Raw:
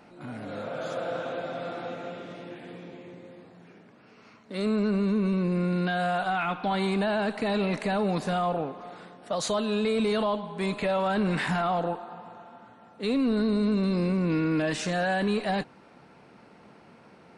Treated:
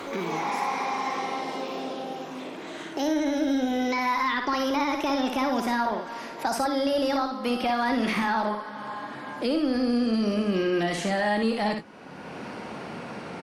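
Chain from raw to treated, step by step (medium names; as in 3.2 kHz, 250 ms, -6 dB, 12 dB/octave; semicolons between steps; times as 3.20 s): gliding tape speed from 158% -> 101%; early reflections 58 ms -6 dB, 76 ms -14.5 dB; three bands compressed up and down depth 70%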